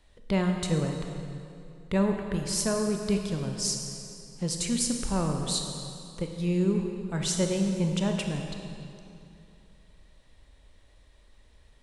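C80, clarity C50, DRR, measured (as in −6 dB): 5.0 dB, 4.0 dB, 3.0 dB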